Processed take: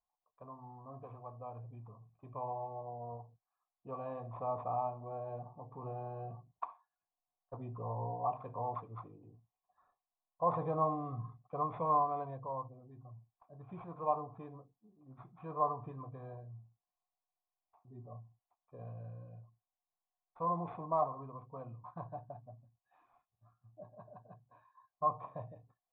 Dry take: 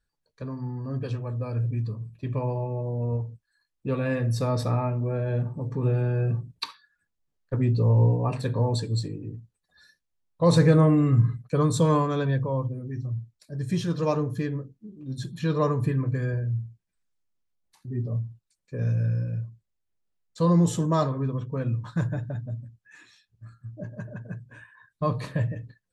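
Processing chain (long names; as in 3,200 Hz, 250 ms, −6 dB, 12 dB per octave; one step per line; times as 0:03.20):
bad sample-rate conversion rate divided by 8×, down none, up zero stuff
formant resonators in series a
level +5 dB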